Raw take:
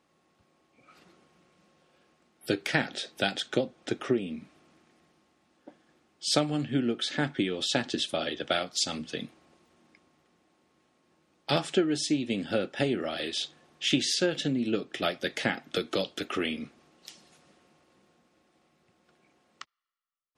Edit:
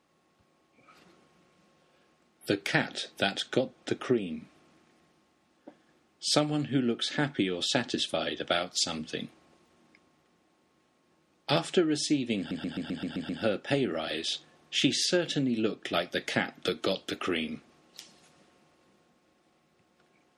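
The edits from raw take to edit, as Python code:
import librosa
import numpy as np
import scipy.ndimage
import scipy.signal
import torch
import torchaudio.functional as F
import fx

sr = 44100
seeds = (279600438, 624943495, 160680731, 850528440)

y = fx.edit(x, sr, fx.stutter(start_s=12.38, slice_s=0.13, count=8), tone=tone)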